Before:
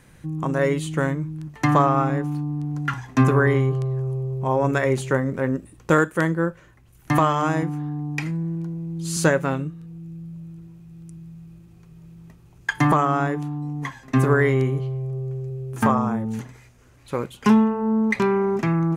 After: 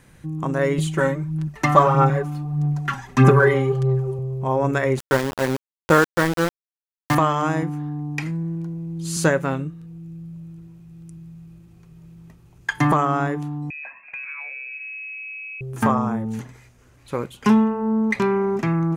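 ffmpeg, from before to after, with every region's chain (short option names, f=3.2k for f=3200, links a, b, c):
-filter_complex "[0:a]asettb=1/sr,asplit=3[a][b][c];[a]atrim=end=0.784[d];[b]atrim=start=0.78:end=4.19,asetpts=PTS-STARTPTS,afade=t=in:d=0.004:c=qsin,afade=t=out:st=3.406:d=0.004:c=qsin,aecho=1:1:5.2:0.76,atrim=end_sample=150381,aphaser=in_gain=1:out_gain=1:delay=3.8:decay=0.47:speed=1.6:type=sinusoidal[e];[c]atrim=start=4.186[f];[d][e]acrossfade=d=0.004:c1=hsin:c2=qsin[g];[g][f]acrossfade=d=0.004:c1=qsin:c2=hsin,asettb=1/sr,asplit=3[h][i][j];[h]atrim=end=4.994[k];[i]atrim=start=4.99:end=7.15,asetpts=PTS-STARTPTS,afade=t=in:d=0.004:c=qsin,afade=t=out:st=2.156:d=0.004:c=qsin,equalizer=f=900:t=o:w=1.9:g=4.5,aeval=exprs='val(0)*gte(abs(val(0)),0.0891)':c=same[l];[j]atrim=start=7.146[m];[k][l]acrossfade=d=0.004:c1=hsin:c2=qsin[n];[n][m]acrossfade=d=0.004:c1=qsin:c2=hsin,asettb=1/sr,asplit=3[o][p][q];[o]atrim=end=13.704[r];[p]atrim=start=13.7:end=15.61,asetpts=PTS-STARTPTS,afade=t=in:d=0.004:c=qsin,afade=t=out:st=1.906:d=0.004:c=qsin,equalizer=f=1.8k:t=o:w=1.1:g=-7.5,lowpass=f=2.3k:t=q:w=0.5098,lowpass=f=2.3k:t=q:w=0.6013,lowpass=f=2.3k:t=q:w=0.9,lowpass=f=2.3k:t=q:w=2.563,afreqshift=-2700,acompressor=threshold=-32dB:ratio=6:attack=3.2:release=140:knee=1:detection=peak[s];[q]atrim=start=15.606[t];[r][s]acrossfade=d=0.004:c1=hsin:c2=qsin[u];[u][t]acrossfade=d=0.004:c1=qsin:c2=hsin"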